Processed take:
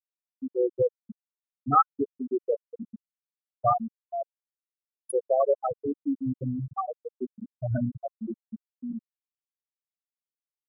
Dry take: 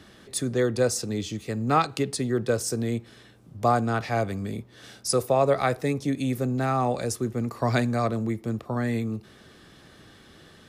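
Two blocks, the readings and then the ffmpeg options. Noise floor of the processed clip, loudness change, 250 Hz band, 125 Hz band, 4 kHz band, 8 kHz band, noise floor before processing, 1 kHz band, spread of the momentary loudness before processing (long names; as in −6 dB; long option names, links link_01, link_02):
below −85 dBFS, −3.0 dB, −6.0 dB, −9.0 dB, below −40 dB, −18.0 dB, −53 dBFS, −1.5 dB, 9 LU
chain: -af "afftfilt=real='re*gte(hypot(re,im),0.447)':imag='im*gte(hypot(re,im),0.447)':win_size=1024:overlap=0.75,superequalizer=10b=2:13b=2.24"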